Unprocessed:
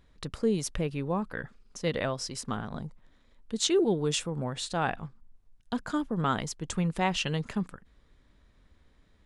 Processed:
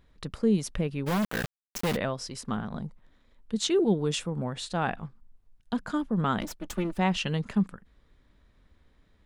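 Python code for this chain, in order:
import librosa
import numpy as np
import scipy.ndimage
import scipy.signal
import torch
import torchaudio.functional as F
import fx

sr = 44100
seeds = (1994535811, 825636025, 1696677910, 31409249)

y = fx.lower_of_two(x, sr, delay_ms=3.4, at=(6.4, 6.97), fade=0.02)
y = fx.dynamic_eq(y, sr, hz=200.0, q=3.5, threshold_db=-46.0, ratio=4.0, max_db=7)
y = fx.quant_companded(y, sr, bits=2, at=(1.06, 1.95), fade=0.02)
y = fx.peak_eq(y, sr, hz=7200.0, db=-3.5, octaves=1.3)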